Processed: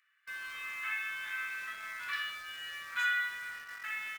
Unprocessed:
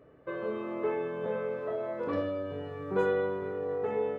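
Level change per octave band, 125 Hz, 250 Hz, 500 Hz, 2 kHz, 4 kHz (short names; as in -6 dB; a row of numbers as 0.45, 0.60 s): under -25 dB, under -30 dB, under -35 dB, +10.0 dB, +13.5 dB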